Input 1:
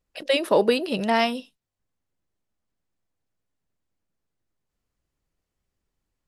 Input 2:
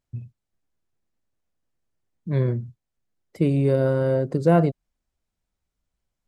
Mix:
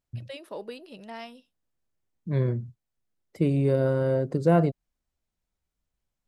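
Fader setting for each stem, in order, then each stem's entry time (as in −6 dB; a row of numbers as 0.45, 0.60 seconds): −19.0, −3.0 decibels; 0.00, 0.00 seconds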